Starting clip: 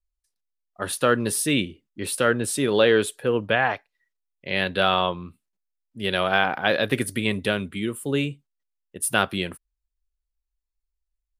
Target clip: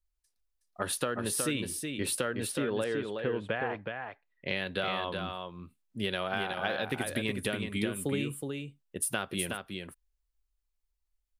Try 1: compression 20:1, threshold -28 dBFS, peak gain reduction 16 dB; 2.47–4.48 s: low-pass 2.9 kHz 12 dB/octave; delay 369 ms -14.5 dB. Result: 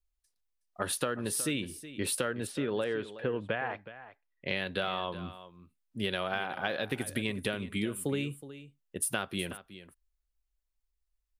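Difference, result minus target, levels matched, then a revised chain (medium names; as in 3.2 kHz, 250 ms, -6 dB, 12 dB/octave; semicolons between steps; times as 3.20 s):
echo-to-direct -9.5 dB
compression 20:1, threshold -28 dBFS, peak gain reduction 16 dB; 2.47–4.48 s: low-pass 2.9 kHz 12 dB/octave; delay 369 ms -5 dB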